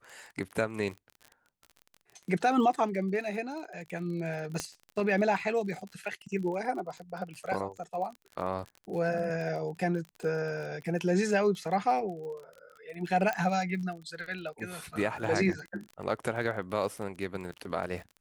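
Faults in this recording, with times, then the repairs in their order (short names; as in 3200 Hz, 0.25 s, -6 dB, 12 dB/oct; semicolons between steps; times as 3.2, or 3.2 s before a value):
crackle 37/s -38 dBFS
4.6 pop -17 dBFS
13.33 pop -18 dBFS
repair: de-click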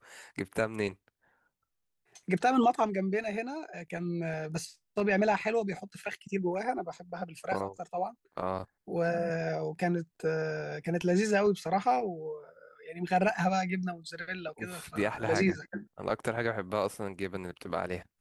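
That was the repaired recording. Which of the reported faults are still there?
4.6 pop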